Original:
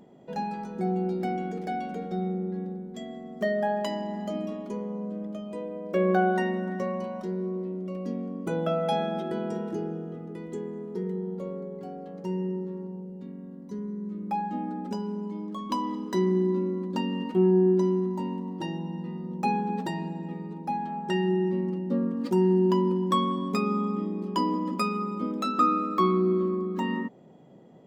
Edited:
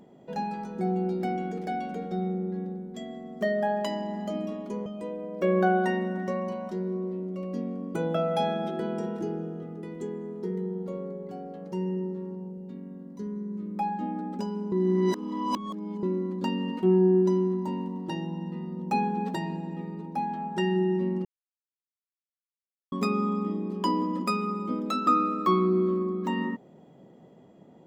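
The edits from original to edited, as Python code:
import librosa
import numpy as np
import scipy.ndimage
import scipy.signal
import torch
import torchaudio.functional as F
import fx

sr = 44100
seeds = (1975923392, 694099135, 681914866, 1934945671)

y = fx.edit(x, sr, fx.cut(start_s=4.86, length_s=0.52),
    fx.reverse_span(start_s=15.24, length_s=1.31),
    fx.silence(start_s=21.77, length_s=1.67), tone=tone)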